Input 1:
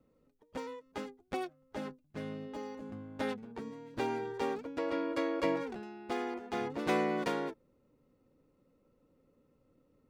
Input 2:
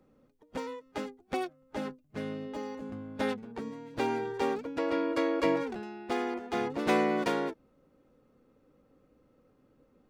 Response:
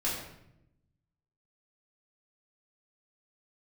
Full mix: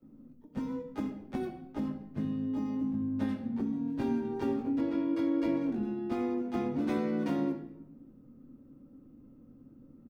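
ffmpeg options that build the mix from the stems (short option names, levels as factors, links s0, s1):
-filter_complex "[0:a]bandreject=f=7200:w=14,volume=0.237,asplit=2[s0][s1];[s1]volume=0.562[s2];[1:a]equalizer=f=125:t=o:w=1:g=5,equalizer=f=250:t=o:w=1:g=11,equalizer=f=500:t=o:w=1:g=-9,equalizer=f=1000:t=o:w=1:g=-4,equalizer=f=2000:t=o:w=1:g=-11,equalizer=f=4000:t=o:w=1:g=-11,equalizer=f=8000:t=o:w=1:g=-12,acompressor=threshold=0.0178:ratio=6,adelay=20,volume=1.12,asplit=2[s3][s4];[s4]volume=0.376[s5];[2:a]atrim=start_sample=2205[s6];[s2][s5]amix=inputs=2:normalize=0[s7];[s7][s6]afir=irnorm=-1:irlink=0[s8];[s0][s3][s8]amix=inputs=3:normalize=0"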